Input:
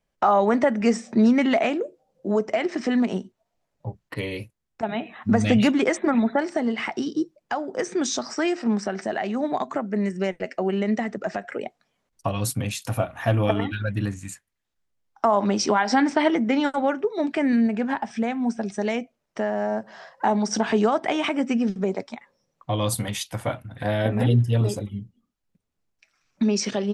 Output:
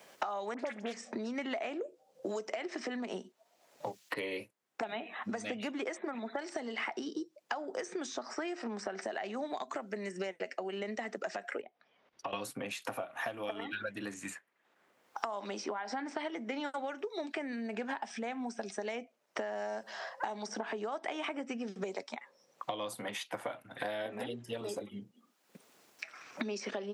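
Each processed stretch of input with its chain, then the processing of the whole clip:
0.54–1.05 dispersion highs, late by 52 ms, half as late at 1500 Hz + Doppler distortion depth 0.31 ms
11.61–12.33 compressor 2:1, threshold -51 dBFS + air absorption 290 m + notch 4200 Hz, Q 15
whole clip: compressor 6:1, threshold -26 dBFS; HPF 370 Hz 12 dB/oct; three-band squash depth 100%; gain -6 dB

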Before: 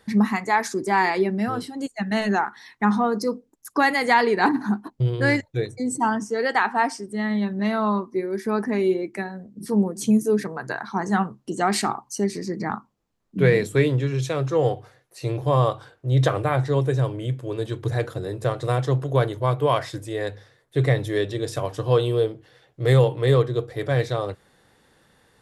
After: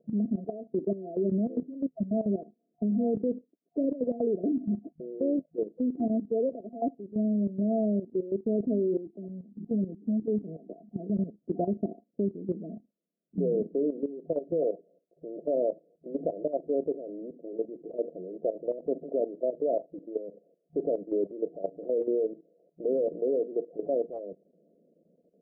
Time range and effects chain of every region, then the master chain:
8.97–11 bell 560 Hz -11 dB 0.88 oct + LFO low-pass saw down 3.6 Hz 800–2300 Hz + overloaded stage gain 15.5 dB
whole clip: FFT band-pass 160–700 Hz; dynamic EQ 260 Hz, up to +4 dB, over -39 dBFS, Q 6.9; level quantiser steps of 13 dB

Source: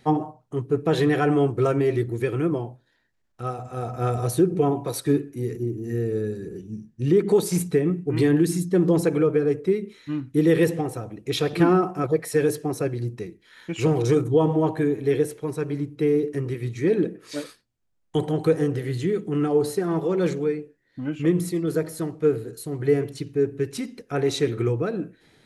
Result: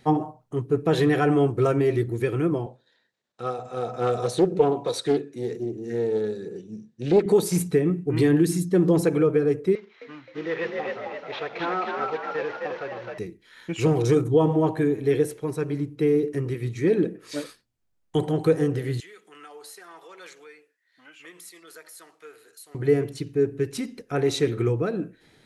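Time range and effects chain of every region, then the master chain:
2.66–7.26 speaker cabinet 190–8900 Hz, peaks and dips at 300 Hz -4 dB, 490 Hz +6 dB, 3800 Hz +8 dB + Doppler distortion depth 0.25 ms
9.75–13.18 CVSD 32 kbps + three-band isolator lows -20 dB, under 570 Hz, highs -20 dB, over 3000 Hz + frequency-shifting echo 0.262 s, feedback 50%, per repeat +50 Hz, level -3 dB
19–22.75 HPF 1300 Hz + compressor 1.5:1, threshold -52 dBFS
whole clip: dry

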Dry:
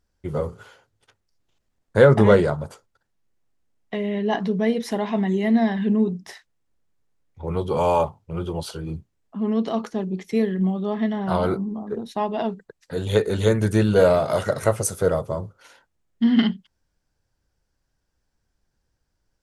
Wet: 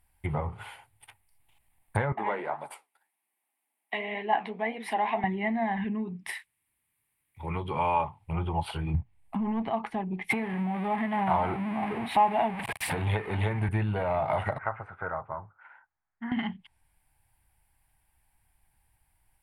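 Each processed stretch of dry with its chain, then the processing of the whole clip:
2.12–5.24 HPF 260 Hz 24 dB/oct + flange 1.9 Hz, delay 6.5 ms, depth 8.9 ms, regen +64%
5.84–8.21 HPF 200 Hz 6 dB/oct + bell 770 Hz -11.5 dB 0.67 oct
8.94–9.7 low shelf 190 Hz +10 dB + sample leveller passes 1
10.3–13.69 zero-crossing step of -28 dBFS + HPF 99 Hz
14.58–16.32 ladder low-pass 1600 Hz, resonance 70% + low shelf 210 Hz -8 dB
whole clip: compressor 5:1, threshold -25 dBFS; treble ducked by the level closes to 2000 Hz, closed at -26.5 dBFS; EQ curve 120 Hz 0 dB, 190 Hz -7 dB, 320 Hz -8 dB, 510 Hz -13 dB, 820 Hz +8 dB, 1400 Hz -5 dB, 2200 Hz +9 dB, 6400 Hz -14 dB, 9300 Hz +15 dB, 13000 Hz +13 dB; gain +3.5 dB

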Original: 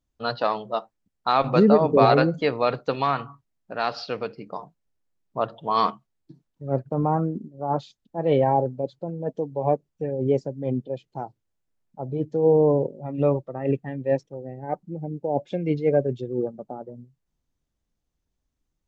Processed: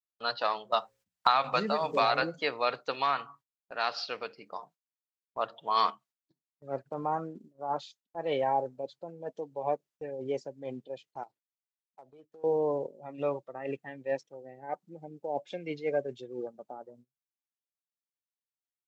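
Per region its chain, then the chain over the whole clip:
0.72–2.22 bell 370 Hz -8.5 dB 0.88 oct + notches 60/120/180/240/300/360/420/480/540 Hz + three-band squash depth 100%
11.23–12.44 median filter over 9 samples + HPF 270 Hz 6 dB/oct + compressor, threshold -40 dBFS
whole clip: HPF 1400 Hz 6 dB/oct; gate -57 dBFS, range -18 dB

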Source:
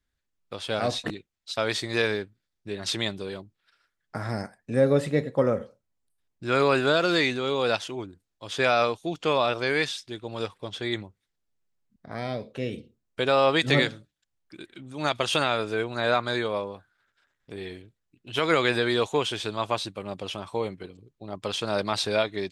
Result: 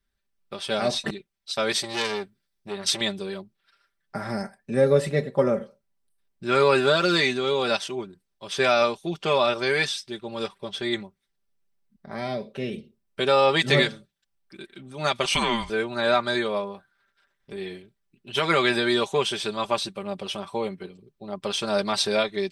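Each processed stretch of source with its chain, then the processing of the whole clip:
1.72–3.01 high shelf 4600 Hz +4.5 dB + core saturation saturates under 2900 Hz
15.25–15.7 HPF 510 Hz + frequency shift -350 Hz
whole clip: comb 5.1 ms, depth 70%; dynamic EQ 7000 Hz, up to +5 dB, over -45 dBFS, Q 1.1; notch 6900 Hz, Q 7.2

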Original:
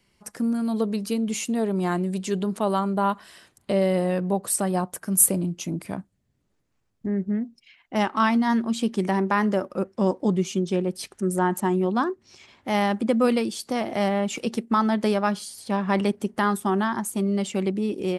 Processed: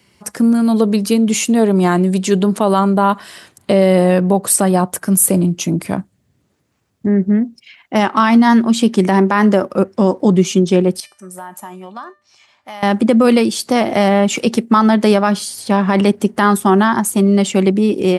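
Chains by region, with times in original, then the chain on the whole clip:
11–12.83 resonant low shelf 560 Hz -8.5 dB, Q 1.5 + compressor, threshold -25 dBFS + resonator 600 Hz, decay 0.36 s, mix 80%
whole clip: HPF 68 Hz 24 dB/oct; maximiser +13 dB; gain -1 dB

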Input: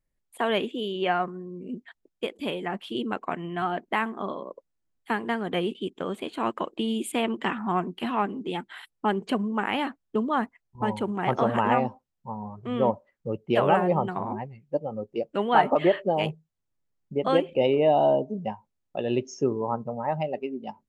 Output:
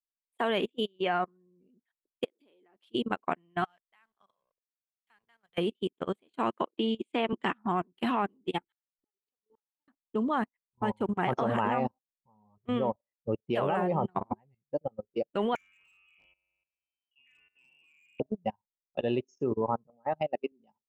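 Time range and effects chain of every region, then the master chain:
2.24–2.86 bell 4500 Hz +3.5 dB 0.53 oct + compressor 10:1, threshold -37 dBFS + resonant high-pass 320 Hz, resonance Q 1.8
3.64–5.58 passive tone stack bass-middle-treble 10-0-10 + backlash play -52 dBFS
6.62–7.33 HPF 230 Hz 24 dB/oct + air absorption 120 m
8.61–9.88 comb 2.3 ms, depth 93% + compressor 3:1, threshold -37 dBFS + flipped gate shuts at -33 dBFS, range -39 dB
15.55–18.2 resonator 95 Hz, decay 1.2 s, mix 90% + inverted band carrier 3100 Hz + hard clip -31 dBFS
19.87–20.52 HPF 190 Hz + air absorption 80 m + notch 980 Hz, Q 7.7
whole clip: level quantiser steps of 15 dB; upward expander 2.5:1, over -47 dBFS; gain +4 dB

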